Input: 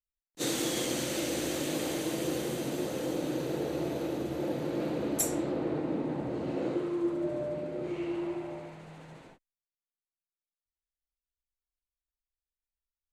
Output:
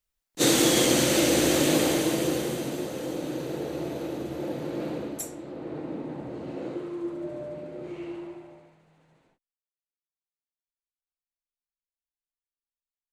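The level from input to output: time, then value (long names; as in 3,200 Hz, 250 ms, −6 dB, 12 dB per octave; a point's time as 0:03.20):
0:01.74 +10.5 dB
0:02.90 +0.5 dB
0:04.95 +0.5 dB
0:05.36 −9 dB
0:05.81 −2.5 dB
0:08.09 −2.5 dB
0:08.84 −14 dB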